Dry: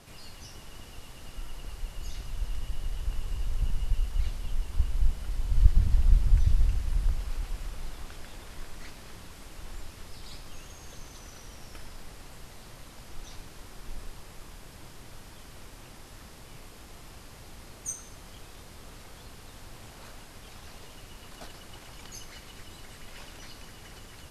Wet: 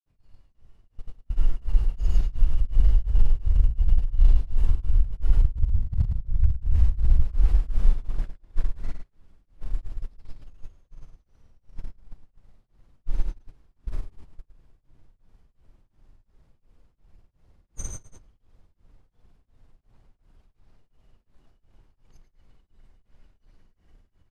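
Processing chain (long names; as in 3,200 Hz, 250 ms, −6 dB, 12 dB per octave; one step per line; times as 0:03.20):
noise gate −37 dBFS, range −24 dB
spectral tilt −3 dB per octave
compressor whose output falls as the input rises −14 dBFS, ratio −1
granular cloud, pitch spread up and down by 0 semitones
single-tap delay 110 ms −7 dB
tremolo along a rectified sine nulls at 2.8 Hz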